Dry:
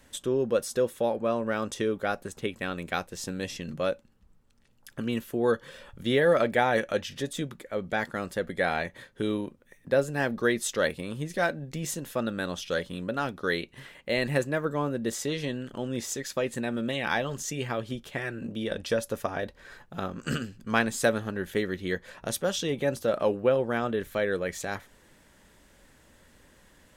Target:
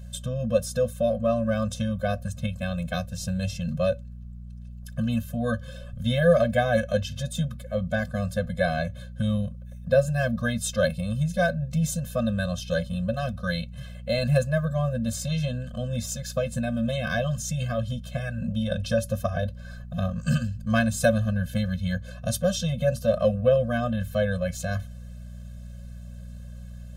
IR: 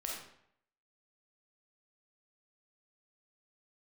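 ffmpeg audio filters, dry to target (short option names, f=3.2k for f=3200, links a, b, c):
-af "equalizer=f=100:t=o:w=0.33:g=12,equalizer=f=160:t=o:w=0.33:g=6,equalizer=f=250:t=o:w=0.33:g=5,equalizer=f=1k:t=o:w=0.33:g=-11,equalizer=f=2k:t=o:w=0.33:g=-11,aeval=exprs='val(0)+0.00708*(sin(2*PI*60*n/s)+sin(2*PI*2*60*n/s)/2+sin(2*PI*3*60*n/s)/3+sin(2*PI*4*60*n/s)/4+sin(2*PI*5*60*n/s)/5)':c=same,afftfilt=real='re*eq(mod(floor(b*sr/1024/250),2),0)':imag='im*eq(mod(floor(b*sr/1024/250),2),0)':win_size=1024:overlap=0.75,volume=5dB"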